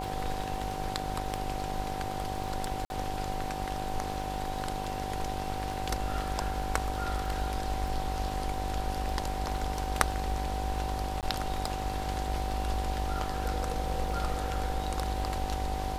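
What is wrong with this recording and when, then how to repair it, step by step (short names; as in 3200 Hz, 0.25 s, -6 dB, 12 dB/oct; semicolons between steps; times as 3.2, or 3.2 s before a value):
buzz 50 Hz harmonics 20 -38 dBFS
crackle 25/s -38 dBFS
tone 760 Hz -36 dBFS
2.85–2.9 gap 51 ms
11.21–11.23 gap 18 ms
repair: de-click; de-hum 50 Hz, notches 20; notch 760 Hz, Q 30; interpolate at 2.85, 51 ms; interpolate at 11.21, 18 ms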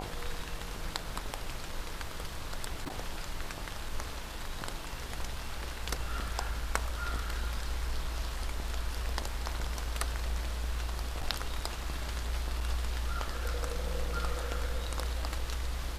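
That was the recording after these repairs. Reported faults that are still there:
none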